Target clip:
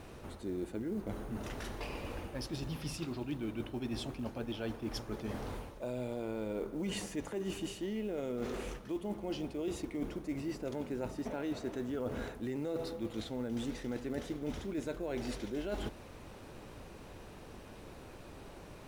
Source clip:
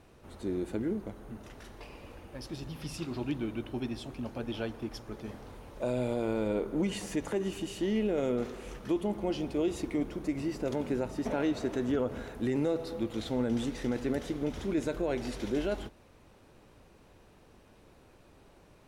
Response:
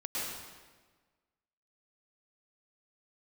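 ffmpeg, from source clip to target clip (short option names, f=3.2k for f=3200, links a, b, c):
-af "acrusher=bits=8:mode=log:mix=0:aa=0.000001,areverse,acompressor=threshold=-44dB:ratio=6,areverse,volume=8dB"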